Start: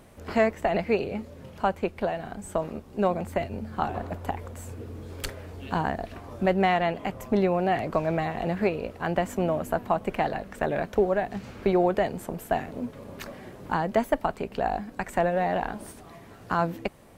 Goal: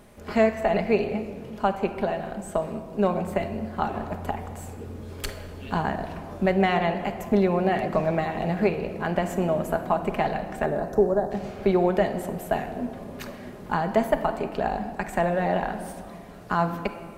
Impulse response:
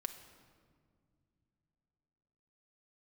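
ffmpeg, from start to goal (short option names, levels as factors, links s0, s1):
-filter_complex "[0:a]asettb=1/sr,asplit=3[s0][s1][s2];[s0]atrim=end=10.664[s3];[s1]atrim=start=10.66:end=11.31,asetpts=PTS-STARTPTS,afade=t=in:d=0.004:c=qsin,afade=t=out:st=0.646:d=0.004:c=qsin,asuperstop=centerf=2500:order=4:qfactor=0.68[s4];[s2]atrim=start=11.306[s5];[s3][s4]acrossfade=d=0.004:c1=hsin:c2=qsin[s6];[s6][s5]acrossfade=d=0.004:c1=qsin:c2=hsin[s7];[1:a]atrim=start_sample=2205[s8];[s7][s8]afir=irnorm=-1:irlink=0,volume=1.41"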